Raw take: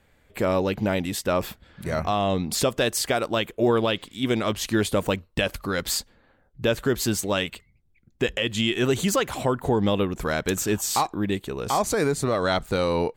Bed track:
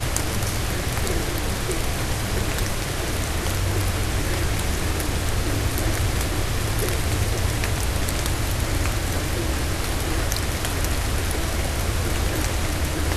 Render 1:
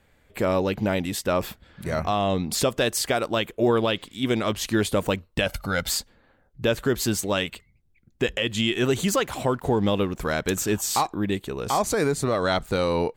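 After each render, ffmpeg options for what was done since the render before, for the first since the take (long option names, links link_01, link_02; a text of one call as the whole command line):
ffmpeg -i in.wav -filter_complex "[0:a]asettb=1/sr,asplit=3[link_01][link_02][link_03];[link_01]atrim=end=5.464[link_04];[link_02]atrim=start=5.46:end=5.89,asetpts=PTS-STARTPTS,afade=type=in:duration=0.004:curve=qsin,afade=type=out:start_time=0.426:duration=0.004:curve=qsin,aecho=1:1:1.4:0.65,atrim=end_sample=18963[link_05];[link_03]atrim=start=5.886[link_06];[link_04][link_05]acrossfade=duration=0.004:curve1=hsin:curve2=qsin[link_07];[link_07][link_06]acrossfade=duration=0.004:curve1=qsin:curve2=hsin,asettb=1/sr,asplit=3[link_08][link_09][link_10];[link_08]atrim=end=8.844[link_11];[link_09]atrim=start=8.84:end=10.26,asetpts=PTS-STARTPTS,afade=type=in:duration=0.004:curve=qsin,afade=type=out:start_time=1.416:duration=0.004:curve=qsin,aeval=exprs='sgn(val(0))*max(abs(val(0))-0.00282,0)':channel_layout=same[link_12];[link_10]atrim=start=10.256[link_13];[link_11][link_12]acrossfade=duration=0.004:curve1=hsin:curve2=qsin[link_14];[link_14][link_13]acrossfade=duration=0.004:curve1=qsin:curve2=hsin" out.wav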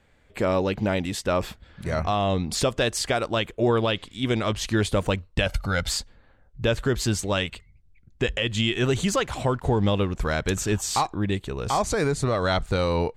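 ffmpeg -i in.wav -af "lowpass=8500,asubboost=boost=2.5:cutoff=130" out.wav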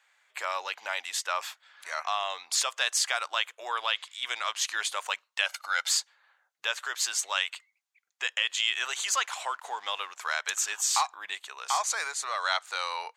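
ffmpeg -i in.wav -af "highpass=frequency=920:width=0.5412,highpass=frequency=920:width=1.3066,equalizer=frequency=6600:width_type=o:width=0.34:gain=5" out.wav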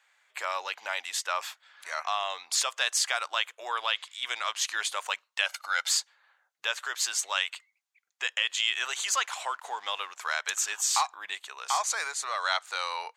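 ffmpeg -i in.wav -af anull out.wav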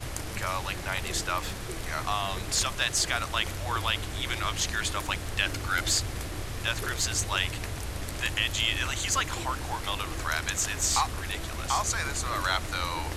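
ffmpeg -i in.wav -i bed.wav -filter_complex "[1:a]volume=-11.5dB[link_01];[0:a][link_01]amix=inputs=2:normalize=0" out.wav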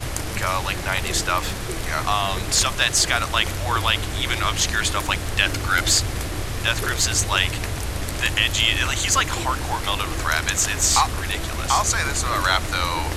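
ffmpeg -i in.wav -af "volume=8dB" out.wav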